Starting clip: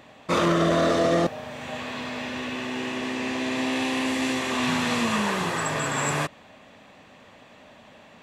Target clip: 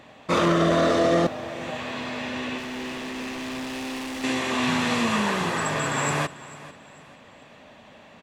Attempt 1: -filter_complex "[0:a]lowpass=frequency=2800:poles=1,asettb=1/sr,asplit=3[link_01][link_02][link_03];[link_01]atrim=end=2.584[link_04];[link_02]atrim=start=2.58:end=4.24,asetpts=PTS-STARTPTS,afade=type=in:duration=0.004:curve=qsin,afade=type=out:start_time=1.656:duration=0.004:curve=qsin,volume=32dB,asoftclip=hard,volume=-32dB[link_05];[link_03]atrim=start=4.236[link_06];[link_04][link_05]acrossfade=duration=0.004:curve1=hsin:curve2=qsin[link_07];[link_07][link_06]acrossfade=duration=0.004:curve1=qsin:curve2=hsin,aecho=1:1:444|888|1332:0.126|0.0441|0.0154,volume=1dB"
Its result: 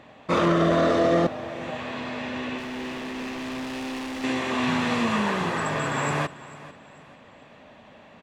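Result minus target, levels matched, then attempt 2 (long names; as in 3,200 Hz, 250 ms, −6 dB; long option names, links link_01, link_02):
8,000 Hz band −6.0 dB
-filter_complex "[0:a]lowpass=frequency=9400:poles=1,asettb=1/sr,asplit=3[link_01][link_02][link_03];[link_01]atrim=end=2.584[link_04];[link_02]atrim=start=2.58:end=4.24,asetpts=PTS-STARTPTS,afade=type=in:duration=0.004:curve=qsin,afade=type=out:start_time=1.656:duration=0.004:curve=qsin,volume=32dB,asoftclip=hard,volume=-32dB[link_05];[link_03]atrim=start=4.236[link_06];[link_04][link_05]acrossfade=duration=0.004:curve1=hsin:curve2=qsin[link_07];[link_07][link_06]acrossfade=duration=0.004:curve1=qsin:curve2=hsin,aecho=1:1:444|888|1332:0.126|0.0441|0.0154,volume=1dB"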